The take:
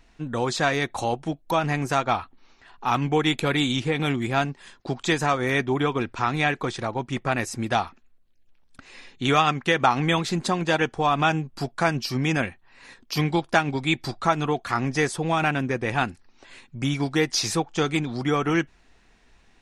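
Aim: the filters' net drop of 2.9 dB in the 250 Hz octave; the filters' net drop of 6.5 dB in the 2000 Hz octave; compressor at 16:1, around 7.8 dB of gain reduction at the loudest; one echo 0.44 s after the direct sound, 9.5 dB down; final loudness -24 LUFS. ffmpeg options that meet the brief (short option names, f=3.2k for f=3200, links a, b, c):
-af "equalizer=f=250:t=o:g=-4,equalizer=f=2k:t=o:g=-8.5,acompressor=threshold=-24dB:ratio=16,aecho=1:1:440:0.335,volume=6dB"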